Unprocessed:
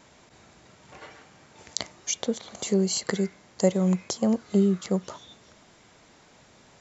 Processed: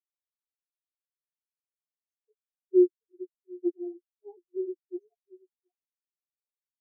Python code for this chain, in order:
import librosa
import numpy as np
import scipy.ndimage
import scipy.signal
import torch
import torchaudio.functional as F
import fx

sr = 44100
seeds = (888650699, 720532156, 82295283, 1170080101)

y = fx.echo_stepped(x, sr, ms=724, hz=290.0, octaves=1.4, feedback_pct=70, wet_db=-1.5)
y = fx.pitch_keep_formants(y, sr, semitones=11.0)
y = fx.chorus_voices(y, sr, voices=4, hz=1.3, base_ms=14, depth_ms=3.0, mix_pct=55)
y = fx.spectral_expand(y, sr, expansion=4.0)